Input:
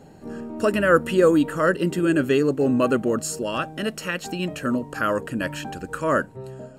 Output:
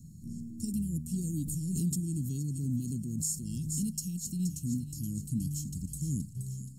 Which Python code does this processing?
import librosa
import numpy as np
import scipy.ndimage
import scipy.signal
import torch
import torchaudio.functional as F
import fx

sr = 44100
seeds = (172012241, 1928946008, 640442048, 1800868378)

y = scipy.signal.sosfilt(scipy.signal.cheby2(4, 70, [600.0, 2000.0], 'bandstop', fs=sr, output='sos'), x)
y = fx.rider(y, sr, range_db=3, speed_s=0.5)
y = fx.echo_wet_highpass(y, sr, ms=474, feedback_pct=50, hz=2100.0, wet_db=-8.5)
y = fx.pre_swell(y, sr, db_per_s=32.0, at=(1.45, 3.92))